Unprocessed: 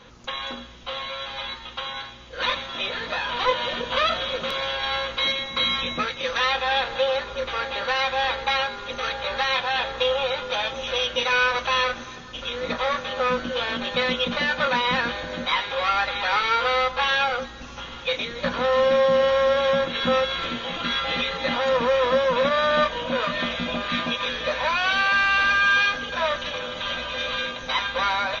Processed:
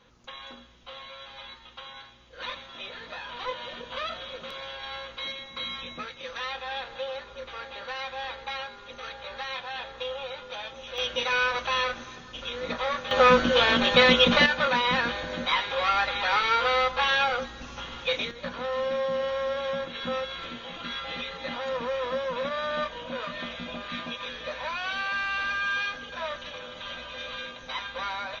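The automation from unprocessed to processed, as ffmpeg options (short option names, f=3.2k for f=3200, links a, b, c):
-af "asetnsamples=n=441:p=0,asendcmd='10.98 volume volume -4.5dB;13.11 volume volume 5.5dB;14.46 volume volume -2dB;18.31 volume volume -9.5dB',volume=-11.5dB"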